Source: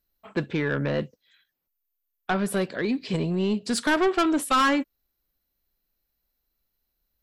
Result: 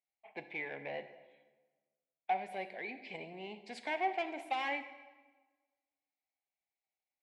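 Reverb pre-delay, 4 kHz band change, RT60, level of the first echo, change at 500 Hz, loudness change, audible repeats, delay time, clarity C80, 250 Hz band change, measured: 33 ms, −15.5 dB, 1.3 s, no echo audible, −15.0 dB, −14.5 dB, no echo audible, no echo audible, 13.5 dB, −24.0 dB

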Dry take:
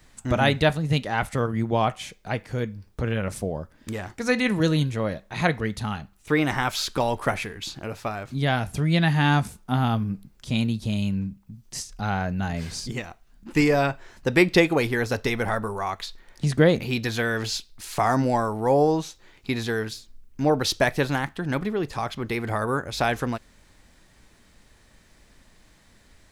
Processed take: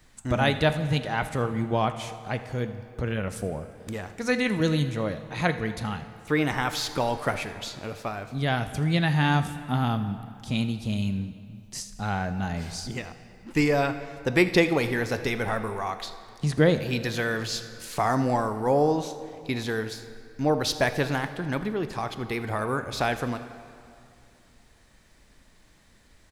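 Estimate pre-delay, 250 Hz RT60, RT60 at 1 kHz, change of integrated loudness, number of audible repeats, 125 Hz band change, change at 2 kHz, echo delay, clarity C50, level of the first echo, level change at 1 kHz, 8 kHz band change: 21 ms, 2.7 s, 2.6 s, −2.5 dB, 1, −2.0 dB, −2.0 dB, 80 ms, 11.0 dB, −19.0 dB, −2.0 dB, −2.0 dB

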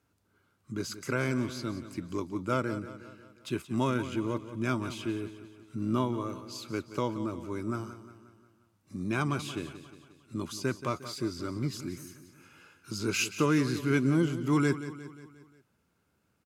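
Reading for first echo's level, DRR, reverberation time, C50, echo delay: −13.0 dB, no reverb audible, no reverb audible, no reverb audible, 178 ms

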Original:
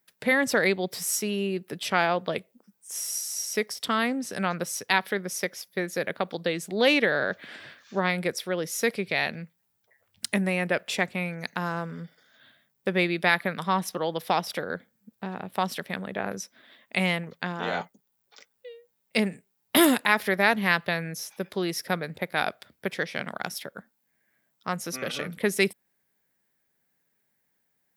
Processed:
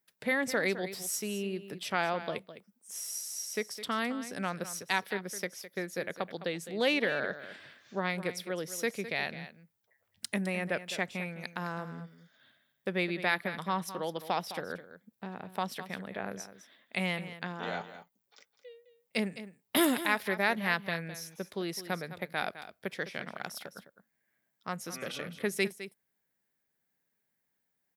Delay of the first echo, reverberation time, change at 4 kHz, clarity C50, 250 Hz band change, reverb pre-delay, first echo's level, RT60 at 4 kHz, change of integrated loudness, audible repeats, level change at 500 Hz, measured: 209 ms, no reverb audible, −7.0 dB, no reverb audible, −7.0 dB, no reverb audible, −13.0 dB, no reverb audible, −7.0 dB, 1, −7.0 dB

